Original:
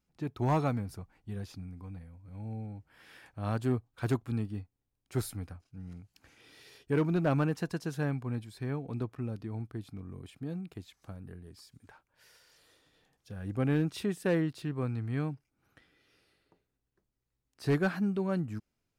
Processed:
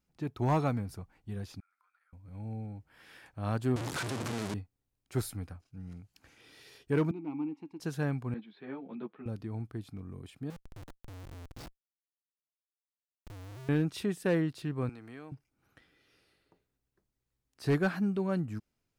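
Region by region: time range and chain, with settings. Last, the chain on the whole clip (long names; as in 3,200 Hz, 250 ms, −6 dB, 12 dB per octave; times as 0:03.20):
0:01.60–0:02.13: downward compressor 3 to 1, threshold −45 dBFS + four-pole ladder high-pass 1,300 Hz, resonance 85%
0:03.76–0:04.54: sign of each sample alone + Chebyshev band-pass filter 150–8,900 Hz + multiband upward and downward compressor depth 40%
0:07.11–0:07.80: formant filter u + hum removal 274.9 Hz, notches 29
0:08.34–0:09.26: Chebyshev band-pass filter 170–3,600 Hz, order 4 + string-ensemble chorus
0:10.50–0:13.69: linear-phase brick-wall band-stop 160–3,600 Hz + mains-hum notches 60/120/180 Hz + comparator with hysteresis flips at −50 dBFS
0:14.89–0:15.32: high-pass filter 330 Hz + downward compressor 3 to 1, threshold −44 dBFS
whole clip: no processing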